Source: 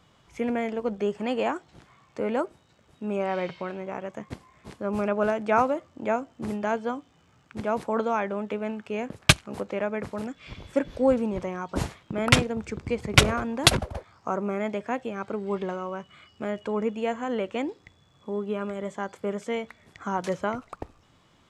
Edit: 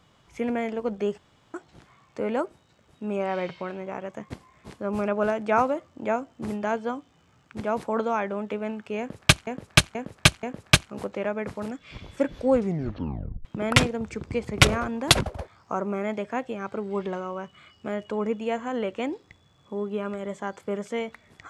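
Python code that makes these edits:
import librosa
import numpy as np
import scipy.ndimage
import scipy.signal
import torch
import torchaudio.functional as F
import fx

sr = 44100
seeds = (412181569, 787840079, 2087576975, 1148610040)

y = fx.edit(x, sr, fx.room_tone_fill(start_s=1.18, length_s=0.36),
    fx.repeat(start_s=8.99, length_s=0.48, count=4),
    fx.tape_stop(start_s=11.09, length_s=0.92), tone=tone)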